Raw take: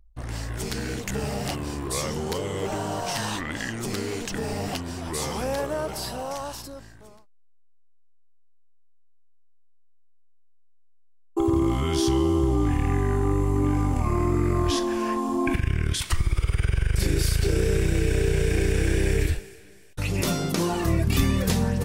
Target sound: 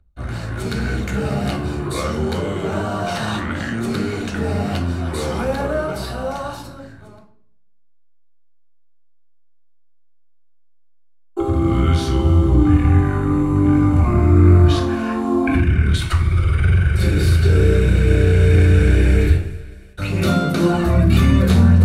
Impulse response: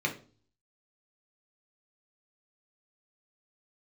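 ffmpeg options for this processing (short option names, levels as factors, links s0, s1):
-filter_complex "[1:a]atrim=start_sample=2205,asetrate=26460,aresample=44100[s0];[0:a][s0]afir=irnorm=-1:irlink=0,volume=0.596"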